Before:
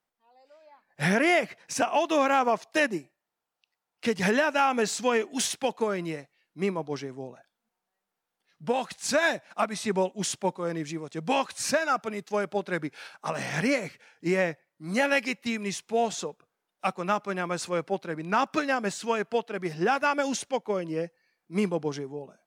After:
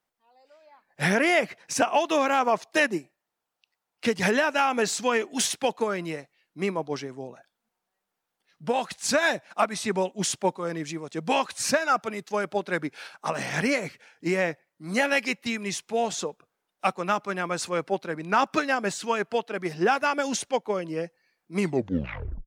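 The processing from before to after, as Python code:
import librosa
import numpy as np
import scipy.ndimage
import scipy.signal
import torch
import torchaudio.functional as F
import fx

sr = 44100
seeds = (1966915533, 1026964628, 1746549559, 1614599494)

y = fx.tape_stop_end(x, sr, length_s=0.89)
y = fx.hpss(y, sr, part='harmonic', gain_db=-4)
y = y * 10.0 ** (3.5 / 20.0)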